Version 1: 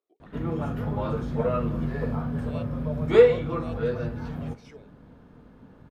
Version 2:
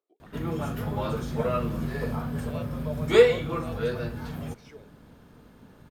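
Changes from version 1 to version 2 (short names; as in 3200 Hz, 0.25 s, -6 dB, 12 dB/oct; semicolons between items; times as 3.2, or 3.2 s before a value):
background: remove LPF 1400 Hz 6 dB/oct; reverb: off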